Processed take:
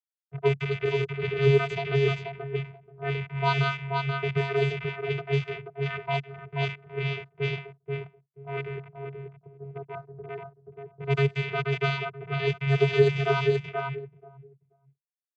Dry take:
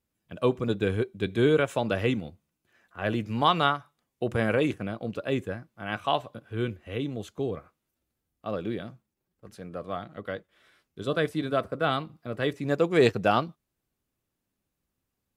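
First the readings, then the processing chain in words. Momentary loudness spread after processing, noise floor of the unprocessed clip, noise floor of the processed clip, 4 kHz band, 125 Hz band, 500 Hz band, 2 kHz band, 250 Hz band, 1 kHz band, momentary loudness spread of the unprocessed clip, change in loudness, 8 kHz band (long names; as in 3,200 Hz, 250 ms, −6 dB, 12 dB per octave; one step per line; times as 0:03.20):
18 LU, −83 dBFS, below −85 dBFS, −0.5 dB, +6.5 dB, +0.5 dB, +2.5 dB, −6.0 dB, −3.0 dB, 15 LU, +0.5 dB, can't be measured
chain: loose part that buzzes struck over −39 dBFS, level −12 dBFS
reverb reduction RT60 1.7 s
tilt shelving filter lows −3.5 dB, about 1,100 Hz
bit reduction 7 bits
channel vocoder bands 16, square 138 Hz
on a send: repeating echo 482 ms, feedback 21%, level −4 dB
on the sum: low-pass that shuts in the quiet parts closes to 330 Hz, open at −20.5 dBFS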